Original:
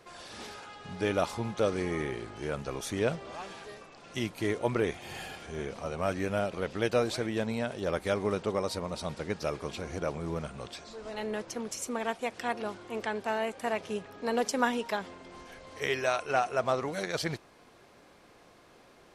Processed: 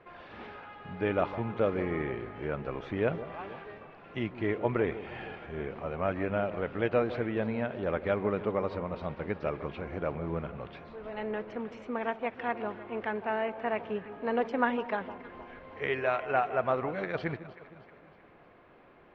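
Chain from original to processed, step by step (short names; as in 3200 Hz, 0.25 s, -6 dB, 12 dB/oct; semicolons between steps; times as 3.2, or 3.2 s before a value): LPF 2600 Hz 24 dB/oct; on a send: echo with dull and thin repeats by turns 0.156 s, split 1200 Hz, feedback 68%, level -13 dB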